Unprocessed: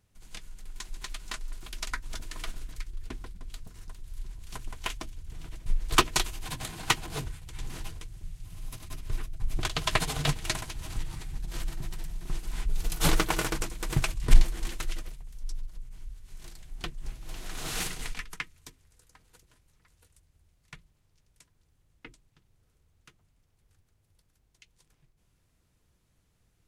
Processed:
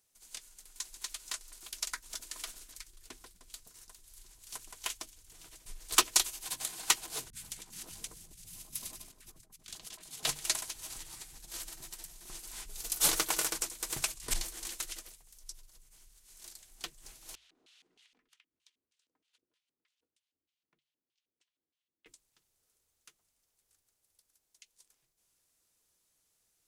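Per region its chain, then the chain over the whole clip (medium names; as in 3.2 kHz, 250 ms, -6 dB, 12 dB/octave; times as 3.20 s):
7.30–10.23 s: peaking EQ 200 Hz +14 dB + compressor with a negative ratio -39 dBFS + three bands offset in time lows, highs, mids 30/100 ms, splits 230/1300 Hz
17.35–22.06 s: treble shelf 5.8 kHz -11 dB + LFO band-pass square 3.2 Hz 280–3100 Hz + compression 8:1, threshold -59 dBFS
whole clip: tone controls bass -15 dB, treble +13 dB; hum notches 50/100/150 Hz; trim -7 dB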